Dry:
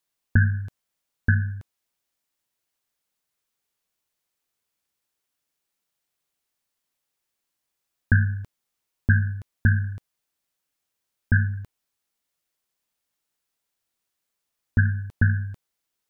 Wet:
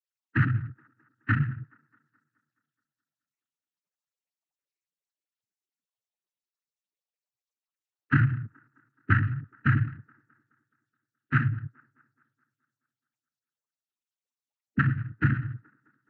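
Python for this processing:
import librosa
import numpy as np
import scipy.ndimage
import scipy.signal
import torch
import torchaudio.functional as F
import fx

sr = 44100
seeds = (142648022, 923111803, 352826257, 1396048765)

y = fx.spec_topn(x, sr, count=16)
y = fx.noise_vocoder(y, sr, seeds[0], bands=12)
y = fx.echo_wet_bandpass(y, sr, ms=212, feedback_pct=55, hz=690.0, wet_db=-22.0)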